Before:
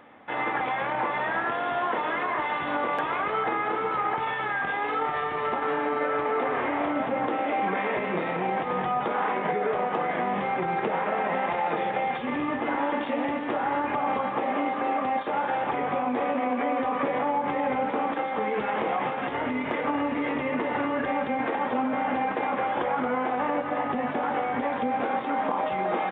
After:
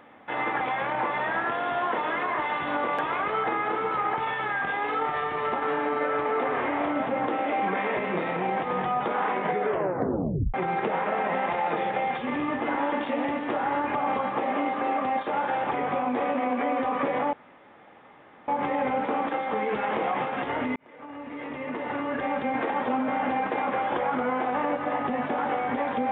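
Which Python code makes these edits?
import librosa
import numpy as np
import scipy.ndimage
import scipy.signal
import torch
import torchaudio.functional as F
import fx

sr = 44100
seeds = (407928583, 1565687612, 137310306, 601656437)

y = fx.edit(x, sr, fx.tape_stop(start_s=9.67, length_s=0.87),
    fx.insert_room_tone(at_s=17.33, length_s=1.15),
    fx.fade_in_span(start_s=19.61, length_s=1.75), tone=tone)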